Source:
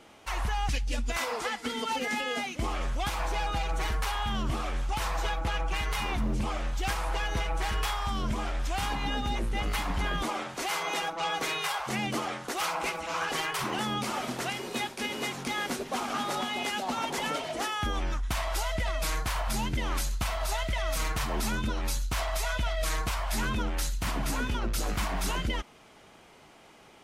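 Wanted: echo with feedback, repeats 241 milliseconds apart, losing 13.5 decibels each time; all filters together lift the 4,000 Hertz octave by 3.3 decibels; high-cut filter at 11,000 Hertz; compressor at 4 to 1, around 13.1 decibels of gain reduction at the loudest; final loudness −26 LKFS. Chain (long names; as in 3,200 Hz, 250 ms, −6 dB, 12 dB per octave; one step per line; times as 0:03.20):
low-pass filter 11,000 Hz
parametric band 4,000 Hz +4.5 dB
downward compressor 4 to 1, threshold −42 dBFS
repeating echo 241 ms, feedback 21%, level −13.5 dB
level +16.5 dB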